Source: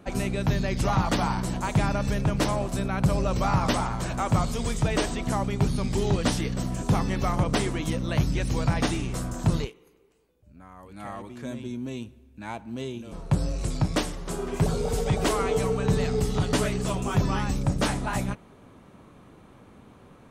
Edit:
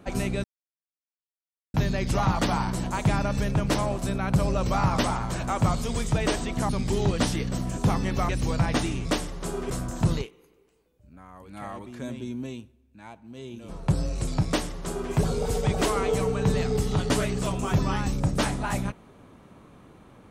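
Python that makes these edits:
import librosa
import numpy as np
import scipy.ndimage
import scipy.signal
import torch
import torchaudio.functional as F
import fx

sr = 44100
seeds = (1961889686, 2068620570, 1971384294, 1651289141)

y = fx.edit(x, sr, fx.insert_silence(at_s=0.44, length_s=1.3),
    fx.cut(start_s=5.39, length_s=0.35),
    fx.cut(start_s=7.34, length_s=1.03),
    fx.fade_down_up(start_s=11.83, length_s=1.32, db=-9.0, fade_s=0.36),
    fx.duplicate(start_s=13.9, length_s=0.65, to_s=9.13), tone=tone)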